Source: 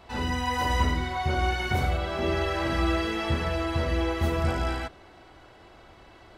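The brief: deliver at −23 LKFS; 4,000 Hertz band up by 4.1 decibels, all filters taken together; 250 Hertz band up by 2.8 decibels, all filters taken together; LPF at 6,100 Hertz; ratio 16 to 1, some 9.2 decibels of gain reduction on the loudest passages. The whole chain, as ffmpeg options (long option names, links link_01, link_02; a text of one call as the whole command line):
ffmpeg -i in.wav -af "lowpass=6100,equalizer=frequency=250:width_type=o:gain=4,equalizer=frequency=4000:width_type=o:gain=6,acompressor=threshold=-28dB:ratio=16,volume=9.5dB" out.wav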